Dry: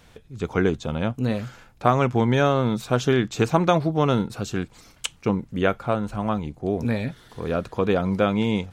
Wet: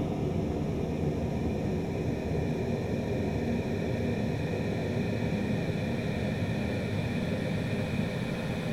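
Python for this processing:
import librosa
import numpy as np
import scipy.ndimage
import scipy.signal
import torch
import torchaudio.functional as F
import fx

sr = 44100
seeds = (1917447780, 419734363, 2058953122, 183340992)

y = fx.over_compress(x, sr, threshold_db=-32.0, ratio=-1.0)
y = fx.paulstretch(y, sr, seeds[0], factor=19.0, window_s=1.0, from_s=6.63)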